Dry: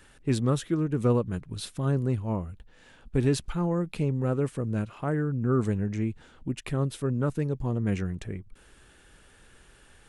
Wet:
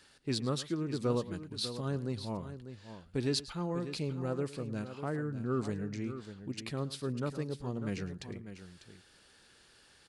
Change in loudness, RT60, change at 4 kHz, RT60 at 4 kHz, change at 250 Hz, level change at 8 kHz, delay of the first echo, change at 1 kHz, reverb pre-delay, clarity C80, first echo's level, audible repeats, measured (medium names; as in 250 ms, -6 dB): -8.0 dB, no reverb, +3.0 dB, no reverb, -7.5 dB, -3.5 dB, 107 ms, -6.0 dB, no reverb, no reverb, -17.0 dB, 2